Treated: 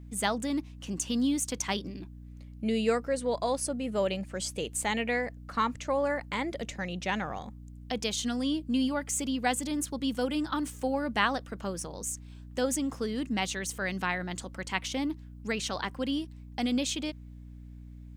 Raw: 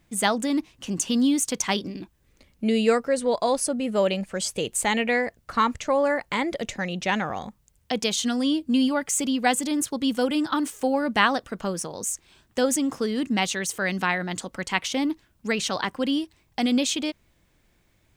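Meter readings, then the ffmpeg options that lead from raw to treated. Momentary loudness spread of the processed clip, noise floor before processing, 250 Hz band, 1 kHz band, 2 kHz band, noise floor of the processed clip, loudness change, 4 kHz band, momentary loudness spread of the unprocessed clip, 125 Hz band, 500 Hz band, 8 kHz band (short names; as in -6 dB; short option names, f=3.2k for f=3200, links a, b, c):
11 LU, -65 dBFS, -6.5 dB, -6.5 dB, -6.5 dB, -46 dBFS, -6.5 dB, -6.5 dB, 8 LU, -2.5 dB, -6.5 dB, -6.5 dB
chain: -af "aeval=exprs='val(0)+0.0126*(sin(2*PI*60*n/s)+sin(2*PI*2*60*n/s)/2+sin(2*PI*3*60*n/s)/3+sin(2*PI*4*60*n/s)/4+sin(2*PI*5*60*n/s)/5)':c=same,volume=-6.5dB"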